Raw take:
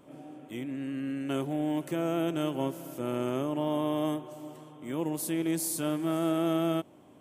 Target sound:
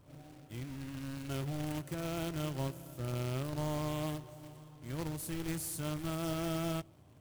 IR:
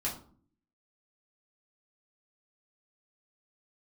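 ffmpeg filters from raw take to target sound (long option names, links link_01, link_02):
-filter_complex "[0:a]acrusher=bits=2:mode=log:mix=0:aa=0.000001,lowshelf=frequency=160:width_type=q:width=1.5:gain=13.5,asplit=2[link_01][link_02];[1:a]atrim=start_sample=2205[link_03];[link_02][link_03]afir=irnorm=-1:irlink=0,volume=-26dB[link_04];[link_01][link_04]amix=inputs=2:normalize=0,volume=-8.5dB"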